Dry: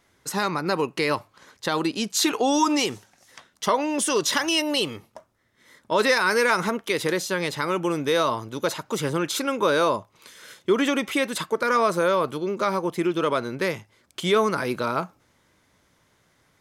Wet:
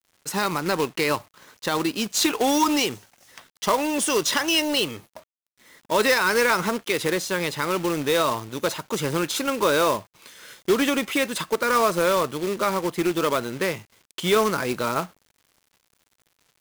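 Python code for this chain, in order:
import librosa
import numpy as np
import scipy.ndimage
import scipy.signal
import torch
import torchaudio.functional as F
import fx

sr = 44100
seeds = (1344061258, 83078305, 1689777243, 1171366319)

y = fx.peak_eq(x, sr, hz=2700.0, db=2.5, octaves=0.26)
y = fx.quant_companded(y, sr, bits=4)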